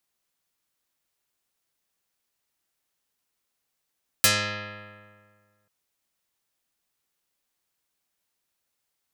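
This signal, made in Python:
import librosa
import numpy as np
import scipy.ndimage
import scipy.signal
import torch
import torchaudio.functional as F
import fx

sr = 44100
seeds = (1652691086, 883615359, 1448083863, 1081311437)

y = fx.pluck(sr, length_s=1.44, note=44, decay_s=1.85, pick=0.27, brightness='dark')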